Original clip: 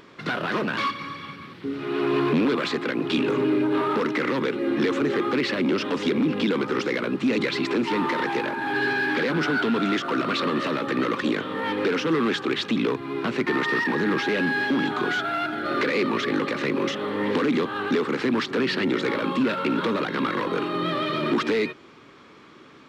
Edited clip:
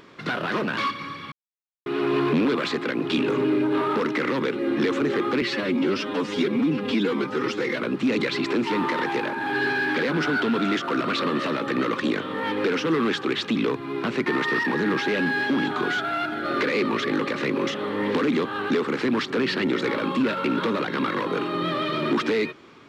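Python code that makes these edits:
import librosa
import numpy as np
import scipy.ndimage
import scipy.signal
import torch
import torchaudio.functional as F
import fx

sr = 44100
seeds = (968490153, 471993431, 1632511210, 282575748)

y = fx.edit(x, sr, fx.silence(start_s=1.32, length_s=0.54),
    fx.stretch_span(start_s=5.42, length_s=1.59, factor=1.5), tone=tone)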